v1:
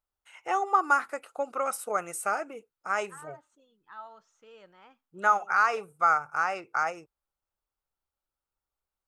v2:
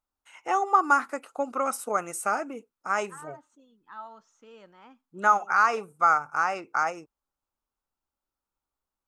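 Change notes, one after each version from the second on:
master: add graphic EQ with 15 bands 250 Hz +11 dB, 1,000 Hz +4 dB, 6,300 Hz +4 dB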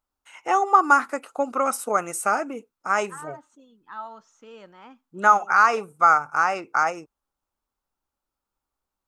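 first voice +4.5 dB
second voice +5.5 dB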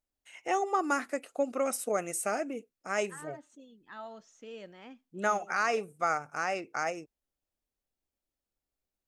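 first voice −4.0 dB
master: add flat-topped bell 1,100 Hz −11 dB 1 octave

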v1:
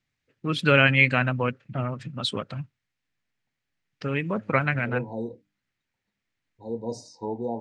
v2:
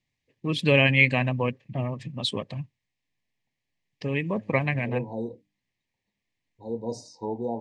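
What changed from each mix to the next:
master: add Butterworth band-reject 1,400 Hz, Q 2.3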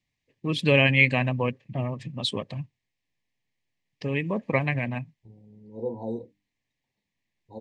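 second voice: entry +0.90 s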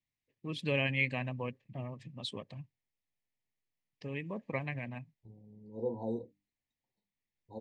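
first voice −12.0 dB
second voice −4.0 dB

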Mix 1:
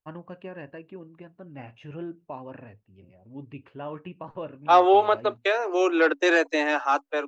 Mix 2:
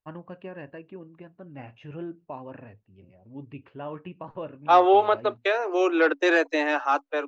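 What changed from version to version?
master: add high-frequency loss of the air 67 metres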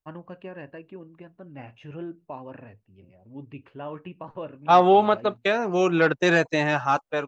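second voice: remove Chebyshev high-pass filter 280 Hz, order 8
master: remove high-frequency loss of the air 67 metres

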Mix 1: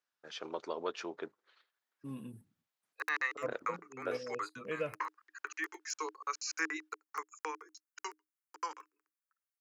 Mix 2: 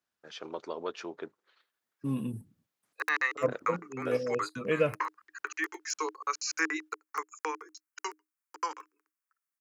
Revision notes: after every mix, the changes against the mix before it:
second voice +9.0 dB
background +5.0 dB
master: add low-shelf EQ 280 Hz +5 dB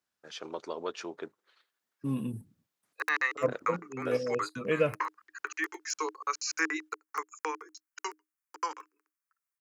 first voice: remove high-frequency loss of the air 71 metres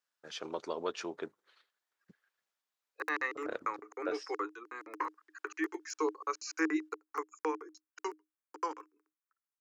second voice: muted
background: add tilt shelving filter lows +9 dB, about 740 Hz

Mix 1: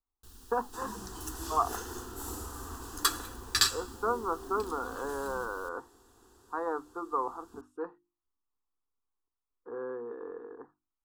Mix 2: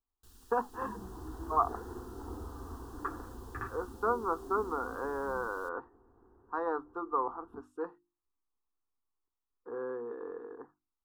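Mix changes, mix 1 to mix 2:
first sound −5.5 dB
second sound: add Gaussian smoothing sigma 6.7 samples

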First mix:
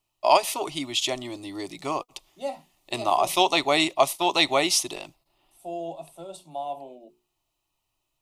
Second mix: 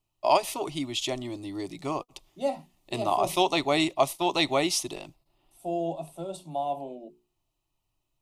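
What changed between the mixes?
first voice −5.5 dB
master: add low-shelf EQ 380 Hz +10 dB

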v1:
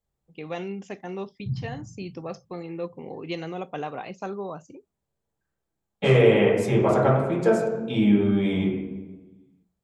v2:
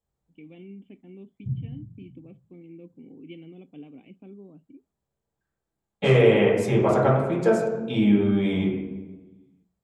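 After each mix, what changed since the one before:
first voice: add formant resonators in series i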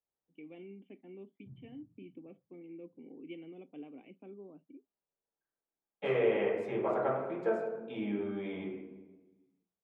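second voice −10.0 dB
master: add three-way crossover with the lows and the highs turned down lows −16 dB, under 270 Hz, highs −20 dB, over 2,900 Hz

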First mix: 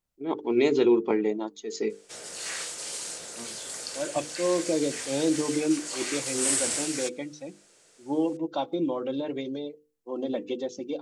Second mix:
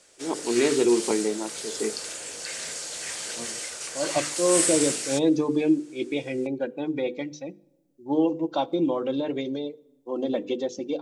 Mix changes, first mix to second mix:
background: entry −1.90 s
reverb: on, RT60 1.4 s

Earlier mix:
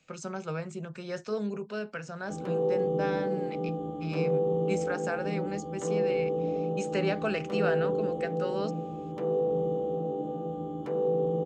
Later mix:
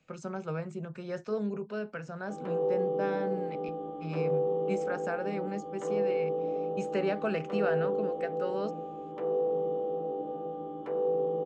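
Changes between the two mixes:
speech: add high-shelf EQ 2,600 Hz −10.5 dB
background: add bass and treble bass −14 dB, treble −14 dB

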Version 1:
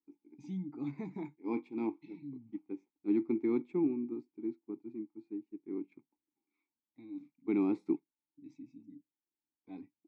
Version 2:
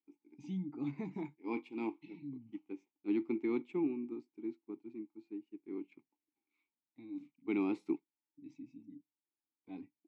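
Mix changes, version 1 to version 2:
second voice: add spectral tilt +2 dB per octave
master: add parametric band 2,900 Hz +13 dB 0.21 octaves

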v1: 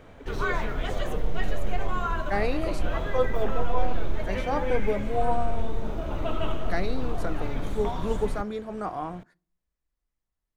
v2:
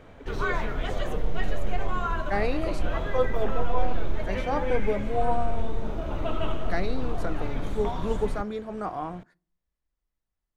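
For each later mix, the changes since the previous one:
master: add high-shelf EQ 9,100 Hz −6 dB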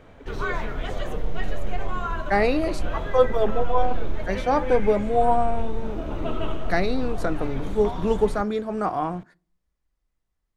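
second voice +7.0 dB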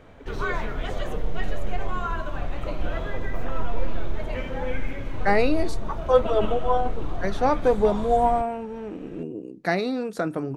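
second voice: entry +2.95 s

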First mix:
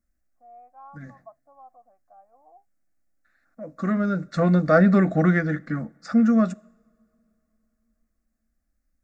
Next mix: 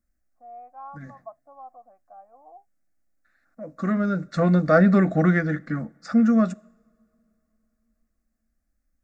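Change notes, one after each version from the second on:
first voice +5.5 dB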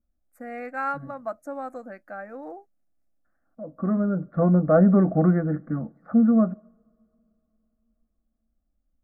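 first voice: remove formant resonators in series a
second voice: add low-pass filter 1,100 Hz 24 dB per octave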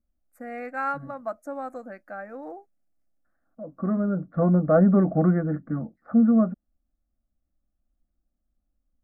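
reverb: off

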